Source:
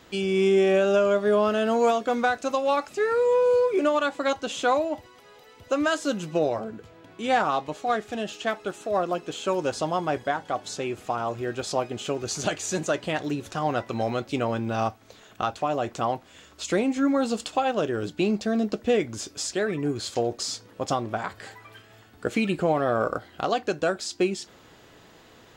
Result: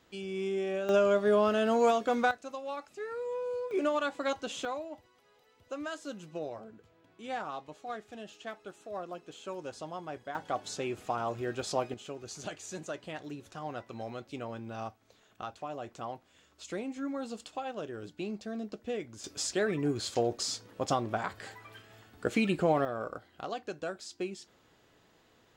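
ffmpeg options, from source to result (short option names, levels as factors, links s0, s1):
-af "asetnsamples=n=441:p=0,asendcmd='0.89 volume volume -4dB;2.31 volume volume -15dB;3.71 volume volume -7dB;4.65 volume volume -14.5dB;10.35 volume volume -5dB;11.94 volume volume -13.5dB;19.24 volume volume -3.5dB;22.85 volume volume -12.5dB',volume=0.224"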